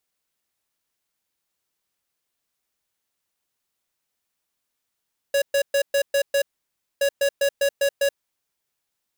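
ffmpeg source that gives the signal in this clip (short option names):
-f lavfi -i "aevalsrc='0.106*(2*lt(mod(559*t,1),0.5)-1)*clip(min(mod(mod(t,1.67),0.2),0.08-mod(mod(t,1.67),0.2))/0.005,0,1)*lt(mod(t,1.67),1.2)':d=3.34:s=44100"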